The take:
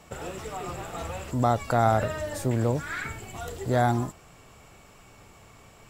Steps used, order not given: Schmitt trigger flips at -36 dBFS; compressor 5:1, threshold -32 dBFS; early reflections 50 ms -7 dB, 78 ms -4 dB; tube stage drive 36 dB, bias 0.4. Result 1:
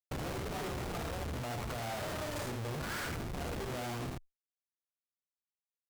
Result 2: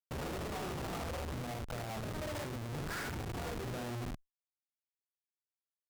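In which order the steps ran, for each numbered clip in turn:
Schmitt trigger > compressor > early reflections > tube stage; compressor > early reflections > Schmitt trigger > tube stage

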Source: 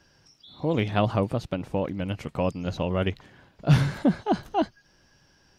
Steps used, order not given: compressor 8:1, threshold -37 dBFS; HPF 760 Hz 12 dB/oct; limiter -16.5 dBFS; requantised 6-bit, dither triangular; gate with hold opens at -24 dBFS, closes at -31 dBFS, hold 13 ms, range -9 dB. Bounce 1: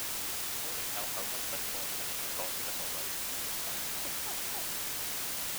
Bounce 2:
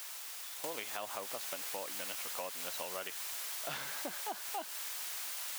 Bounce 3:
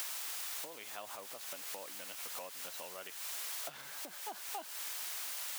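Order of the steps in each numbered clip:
HPF > limiter > compressor > gate with hold > requantised; requantised > gate with hold > HPF > limiter > compressor; gate with hold > requantised > limiter > compressor > HPF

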